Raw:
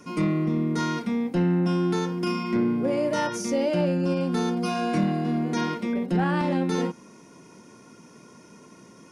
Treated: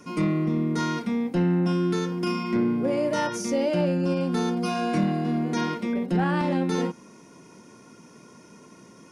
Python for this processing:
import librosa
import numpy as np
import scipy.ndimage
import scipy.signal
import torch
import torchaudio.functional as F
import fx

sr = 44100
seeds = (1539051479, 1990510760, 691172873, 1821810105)

y = fx.peak_eq(x, sr, hz=820.0, db=-12.5, octaves=0.28, at=(1.72, 2.12))